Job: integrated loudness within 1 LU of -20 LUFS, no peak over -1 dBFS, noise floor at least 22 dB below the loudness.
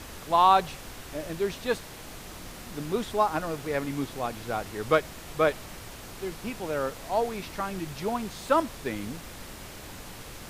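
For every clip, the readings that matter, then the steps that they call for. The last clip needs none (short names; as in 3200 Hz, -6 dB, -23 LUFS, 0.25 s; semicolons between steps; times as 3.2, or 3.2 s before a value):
noise floor -44 dBFS; noise floor target -51 dBFS; loudness -29.0 LUFS; peak -8.5 dBFS; loudness target -20.0 LUFS
-> noise print and reduce 7 dB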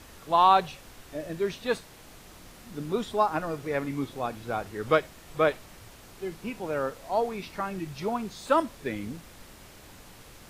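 noise floor -50 dBFS; noise floor target -51 dBFS
-> noise print and reduce 6 dB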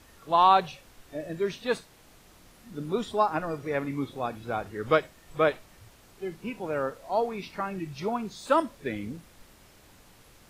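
noise floor -56 dBFS; loudness -28.5 LUFS; peak -8.0 dBFS; loudness target -20.0 LUFS
-> gain +8.5 dB; limiter -1 dBFS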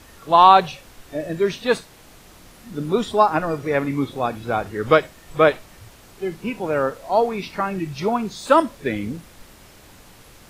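loudness -20.5 LUFS; peak -1.0 dBFS; noise floor -48 dBFS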